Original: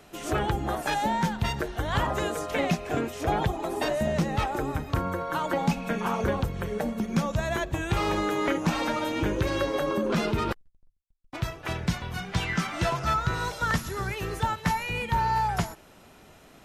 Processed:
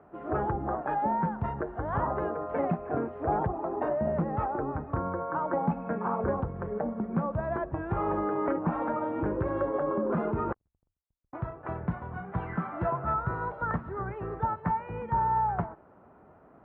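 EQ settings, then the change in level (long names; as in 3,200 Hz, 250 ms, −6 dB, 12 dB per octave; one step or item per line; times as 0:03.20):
high-pass filter 55 Hz
low-pass filter 1,300 Hz 24 dB per octave
low-shelf EQ 320 Hz −4.5 dB
0.0 dB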